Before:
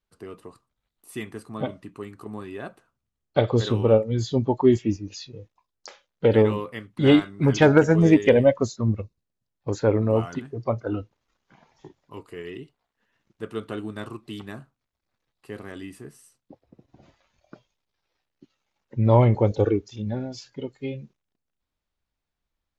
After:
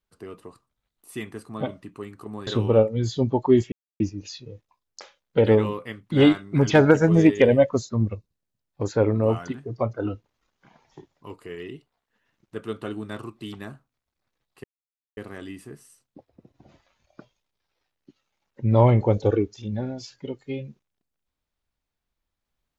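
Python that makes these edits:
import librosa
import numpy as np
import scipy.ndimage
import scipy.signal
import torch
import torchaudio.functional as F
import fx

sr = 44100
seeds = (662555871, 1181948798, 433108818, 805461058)

y = fx.edit(x, sr, fx.cut(start_s=2.47, length_s=1.15),
    fx.insert_silence(at_s=4.87, length_s=0.28),
    fx.insert_silence(at_s=15.51, length_s=0.53), tone=tone)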